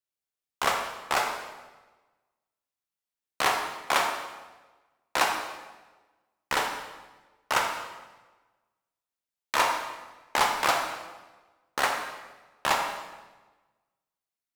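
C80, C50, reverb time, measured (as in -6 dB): 6.0 dB, 4.0 dB, 1.2 s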